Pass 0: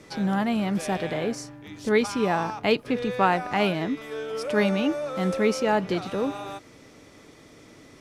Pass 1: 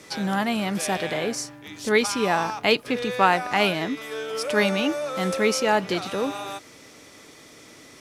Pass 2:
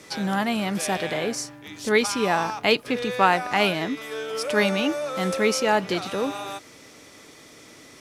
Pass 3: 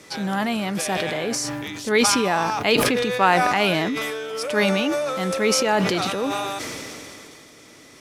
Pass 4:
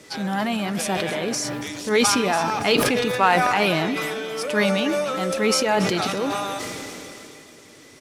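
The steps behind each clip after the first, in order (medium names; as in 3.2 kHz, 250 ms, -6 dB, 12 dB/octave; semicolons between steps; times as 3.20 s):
tilt EQ +2 dB/octave; trim +3 dB
no audible change
decay stretcher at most 20 dB/s
coarse spectral quantiser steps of 15 dB; feedback delay 282 ms, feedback 47%, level -14 dB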